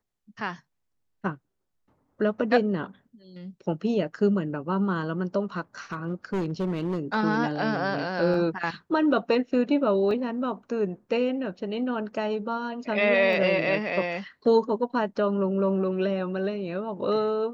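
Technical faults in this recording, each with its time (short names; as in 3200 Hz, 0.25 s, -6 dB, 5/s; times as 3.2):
5.92–7 clipped -23.5 dBFS
8.34 gap 2.5 ms
10.11 gap 2.1 ms
13.33 gap 2.2 ms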